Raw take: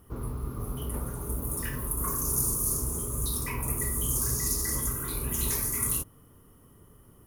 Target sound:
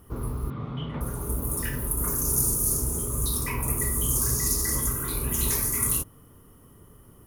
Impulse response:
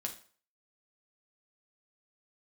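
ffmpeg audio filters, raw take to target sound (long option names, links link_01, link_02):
-filter_complex "[0:a]asettb=1/sr,asplit=3[link_01][link_02][link_03];[link_01]atrim=end=0.504[link_04];[link_02]atrim=start=0.5:end=1.01,asetpts=PTS-STARTPTS,afade=type=in:duration=0.004:curve=qsin,afade=type=out:start_time=0.506:duration=0.004:curve=qsin,highpass=120,equalizer=frequency=150:width_type=q:width=4:gain=9,equalizer=frequency=390:width_type=q:width=4:gain=-7,equalizer=frequency=2100:width_type=q:width=4:gain=7,equalizer=frequency=3500:width_type=q:width=4:gain=9,lowpass=frequency=3600:width=0.5412,lowpass=frequency=3600:width=1.3066[link_05];[link_03]atrim=start=1.006[link_06];[link_04][link_05]acrossfade=duration=0.004:curve1=hsin:curve2=qsin[link_07];[link_07][link_06]acrossfade=duration=0.004:curve1=qsin:curve2=hsin,asettb=1/sr,asplit=3[link_08][link_09][link_10];[link_08]atrim=end=1.624[link_11];[link_09]atrim=start=1.62:end=3.07,asetpts=PTS-STARTPTS,afade=type=in:duration=0.004:curve=qsin,afade=type=out:start_time=1.446:duration=0.004:curve=qsin,bandreject=frequency=1100:width=6.3[link_12];[link_10]atrim=start=3.066[link_13];[link_11][link_12]acrossfade=duration=0.004:curve1=hsin:curve2=qsin[link_14];[link_14][link_13]acrossfade=duration=0.004:curve1=qsin:curve2=hsin,volume=3.5dB"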